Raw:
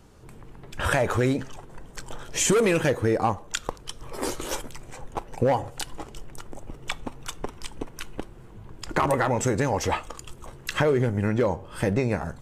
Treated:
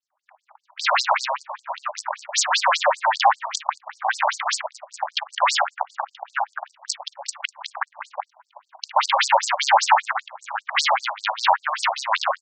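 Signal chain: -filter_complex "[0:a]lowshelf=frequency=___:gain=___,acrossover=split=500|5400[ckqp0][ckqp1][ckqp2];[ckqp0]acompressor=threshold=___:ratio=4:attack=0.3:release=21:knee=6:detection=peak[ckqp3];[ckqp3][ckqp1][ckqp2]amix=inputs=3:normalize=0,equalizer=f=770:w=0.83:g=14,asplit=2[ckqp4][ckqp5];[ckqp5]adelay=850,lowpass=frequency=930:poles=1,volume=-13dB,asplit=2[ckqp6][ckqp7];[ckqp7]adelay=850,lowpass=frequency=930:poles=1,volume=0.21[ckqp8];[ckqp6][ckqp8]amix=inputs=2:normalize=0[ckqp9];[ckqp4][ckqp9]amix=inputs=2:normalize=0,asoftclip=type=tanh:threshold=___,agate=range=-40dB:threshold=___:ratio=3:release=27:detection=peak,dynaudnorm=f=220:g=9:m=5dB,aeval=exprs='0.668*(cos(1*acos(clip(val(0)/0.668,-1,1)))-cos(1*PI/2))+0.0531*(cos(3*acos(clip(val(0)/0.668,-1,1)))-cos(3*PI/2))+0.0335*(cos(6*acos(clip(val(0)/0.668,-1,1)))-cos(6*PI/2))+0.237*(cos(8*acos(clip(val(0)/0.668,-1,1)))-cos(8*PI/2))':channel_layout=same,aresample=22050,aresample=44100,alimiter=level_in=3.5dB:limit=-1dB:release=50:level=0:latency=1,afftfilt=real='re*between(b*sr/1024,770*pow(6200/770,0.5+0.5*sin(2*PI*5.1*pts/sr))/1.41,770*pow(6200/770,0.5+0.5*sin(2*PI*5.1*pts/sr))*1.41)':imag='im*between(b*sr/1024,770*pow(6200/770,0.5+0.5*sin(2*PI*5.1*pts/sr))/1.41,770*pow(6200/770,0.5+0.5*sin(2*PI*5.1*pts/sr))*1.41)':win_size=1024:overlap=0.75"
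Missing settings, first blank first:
110, 7.5, -34dB, -8dB, -36dB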